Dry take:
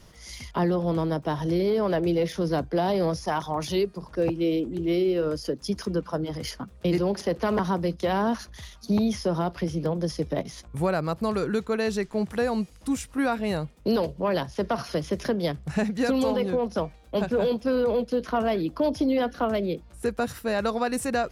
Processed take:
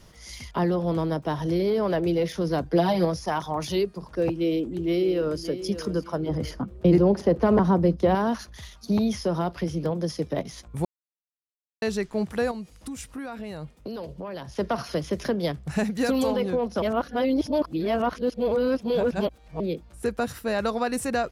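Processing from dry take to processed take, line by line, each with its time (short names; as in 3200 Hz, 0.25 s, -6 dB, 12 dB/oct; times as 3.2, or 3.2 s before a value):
2.65–3.05 comb 6.2 ms, depth 90%
4.44–5.45 echo throw 0.58 s, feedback 25%, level -12 dB
6.26–8.15 tilt shelf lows +7 dB, about 1300 Hz
9.9–10.34 HPF 97 Hz
10.85–11.82 mute
12.51–14.5 compressor, threshold -32 dBFS
15.71–16.27 high shelf 9100 Hz +9 dB
16.82–19.6 reverse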